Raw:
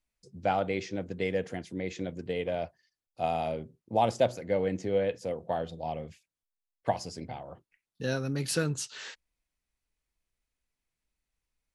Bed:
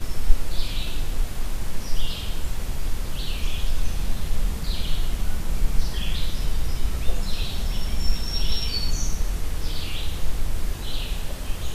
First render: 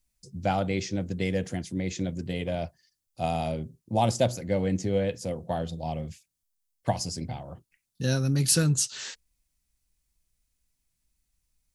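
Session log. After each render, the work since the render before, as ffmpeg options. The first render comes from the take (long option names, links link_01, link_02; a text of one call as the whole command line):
ffmpeg -i in.wav -af "bass=frequency=250:gain=10,treble=frequency=4000:gain=12,bandreject=frequency=450:width=12" out.wav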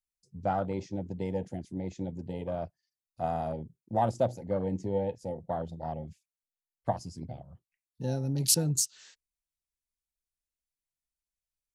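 ffmpeg -i in.wav -af "afwtdn=0.0251,lowshelf=frequency=490:gain=-6.5" out.wav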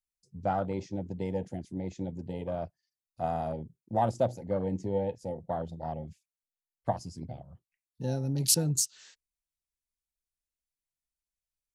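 ffmpeg -i in.wav -af anull out.wav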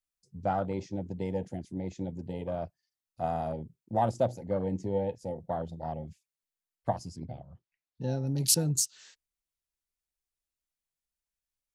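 ffmpeg -i in.wav -filter_complex "[0:a]asettb=1/sr,asplit=3[link_01][link_02][link_03];[link_01]atrim=end=7.164[link_04];[link_02]atrim=start=7.16:end=8.27,asetpts=PTS-STARTPTS,afade=type=in:duration=0.004:curve=qsin,afade=type=out:start_time=1.106:duration=0.004:curve=qsin,lowpass=5000[link_05];[link_03]atrim=start=8.266[link_06];[link_04][link_05]acrossfade=duration=0.004:curve1=hsin:curve2=qsin[link_07];[link_07][link_06]acrossfade=duration=0.004:curve1=qsin:curve2=hsin" out.wav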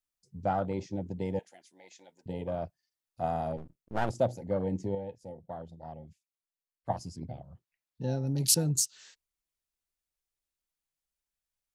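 ffmpeg -i in.wav -filter_complex "[0:a]asettb=1/sr,asplit=3[link_01][link_02][link_03];[link_01]atrim=end=1.394[link_04];[link_02]atrim=start=1.39:end=2.26,asetpts=PTS-STARTPTS,afade=type=in:duration=0.004:curve=qsin,afade=type=out:start_time=0.866:duration=0.004:curve=qsin,highpass=1200[link_05];[link_03]atrim=start=2.256[link_06];[link_04][link_05]acrossfade=duration=0.004:curve1=hsin:curve2=qsin[link_07];[link_07][link_06]acrossfade=duration=0.004:curve1=qsin:curve2=hsin,asettb=1/sr,asplit=3[link_08][link_09][link_10];[link_08]atrim=end=3.574[link_11];[link_09]atrim=start=3.57:end=4.1,asetpts=PTS-STARTPTS,afade=type=in:duration=0.004:curve=qsin,afade=type=out:start_time=0.526:duration=0.004:curve=qsin,aeval=exprs='max(val(0),0)':channel_layout=same[link_12];[link_10]atrim=start=4.096[link_13];[link_11][link_12]acrossfade=duration=0.004:curve1=hsin:curve2=qsin[link_14];[link_14][link_13]acrossfade=duration=0.004:curve1=qsin:curve2=hsin,asplit=3[link_15][link_16][link_17];[link_15]atrim=end=4.952[link_18];[link_16]atrim=start=4.948:end=6.902,asetpts=PTS-STARTPTS,volume=-8dB[link_19];[link_17]atrim=start=6.898[link_20];[link_18][link_19]acrossfade=duration=0.004:curve1=hsin:curve2=hsin[link_21];[link_21][link_20]acrossfade=duration=0.004:curve1=hsin:curve2=hsin" out.wav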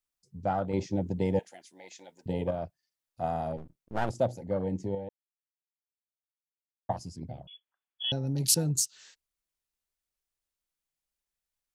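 ffmpeg -i in.wav -filter_complex "[0:a]asettb=1/sr,asplit=3[link_01][link_02][link_03];[link_01]atrim=end=0.734[link_04];[link_02]atrim=start=0.73:end=2.51,asetpts=PTS-STARTPTS,afade=type=in:duration=0.004:curve=qsin,afade=type=out:start_time=1.776:duration=0.004:curve=qsin,acontrast=36[link_05];[link_03]atrim=start=2.506[link_06];[link_04][link_05]acrossfade=duration=0.004:curve1=hsin:curve2=qsin[link_07];[link_07][link_06]acrossfade=duration=0.004:curve1=qsin:curve2=hsin,asettb=1/sr,asplit=3[link_08][link_09][link_10];[link_08]atrim=end=7.474[link_11];[link_09]atrim=start=7.47:end=8.12,asetpts=PTS-STARTPTS,afade=type=in:duration=0.004:curve=qsin,afade=type=out:start_time=0.646:duration=0.004:curve=qsin,lowpass=frequency=3000:width_type=q:width=0.5098,lowpass=frequency=3000:width_type=q:width=0.6013,lowpass=frequency=3000:width_type=q:width=0.9,lowpass=frequency=3000:width_type=q:width=2.563,afreqshift=-3500[link_12];[link_10]atrim=start=8.116[link_13];[link_11][link_12]acrossfade=duration=0.004:curve1=hsin:curve2=qsin[link_14];[link_14][link_13]acrossfade=duration=0.004:curve1=qsin:curve2=hsin,asplit=3[link_15][link_16][link_17];[link_15]atrim=end=5.09,asetpts=PTS-STARTPTS,afade=type=out:start_time=5.086:duration=0.004:curve=hsin[link_18];[link_16]atrim=start=5.09:end=6.89,asetpts=PTS-STARTPTS,volume=0[link_19];[link_17]atrim=start=6.89,asetpts=PTS-STARTPTS,afade=type=in:duration=0.004:curve=hsin[link_20];[link_18][link_19][link_20]concat=n=3:v=0:a=1" out.wav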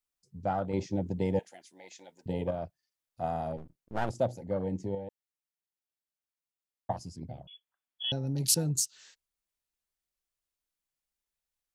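ffmpeg -i in.wav -af "volume=-1.5dB" out.wav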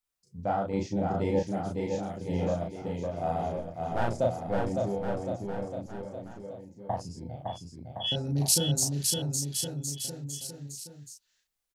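ffmpeg -i in.wav -filter_complex "[0:a]asplit=2[link_01][link_02];[link_02]adelay=35,volume=-2dB[link_03];[link_01][link_03]amix=inputs=2:normalize=0,aecho=1:1:560|1064|1518|1926|2293:0.631|0.398|0.251|0.158|0.1" out.wav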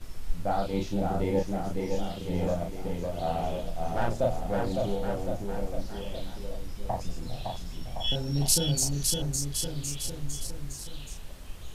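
ffmpeg -i in.wav -i bed.wav -filter_complex "[1:a]volume=-13.5dB[link_01];[0:a][link_01]amix=inputs=2:normalize=0" out.wav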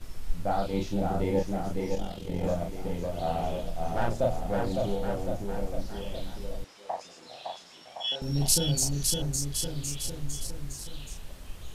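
ffmpeg -i in.wav -filter_complex "[0:a]asettb=1/sr,asplit=3[link_01][link_02][link_03];[link_01]atrim=end=1.954[link_04];[link_02]atrim=start=1.95:end=2.44,asetpts=PTS-STARTPTS,afade=type=in:duration=0.004:curve=qsin,afade=type=out:start_time=0.486:duration=0.004:curve=qsin,tremolo=f=43:d=0.621[link_05];[link_03]atrim=start=2.436[link_06];[link_04][link_05]acrossfade=duration=0.004:curve1=hsin:curve2=qsin[link_07];[link_07][link_06]acrossfade=duration=0.004:curve1=qsin:curve2=hsin,asettb=1/sr,asplit=3[link_08][link_09][link_10];[link_08]atrim=end=6.644[link_11];[link_09]atrim=start=6.64:end=8.22,asetpts=PTS-STARTPTS,afade=type=in:duration=0.004:curve=qsin,afade=type=out:start_time=1.576:duration=0.004:curve=qsin,highpass=560,lowpass=7100[link_12];[link_10]atrim=start=8.216[link_13];[link_11][link_12]acrossfade=duration=0.004:curve1=hsin:curve2=qsin[link_14];[link_14][link_13]acrossfade=duration=0.004:curve1=qsin:curve2=hsin" out.wav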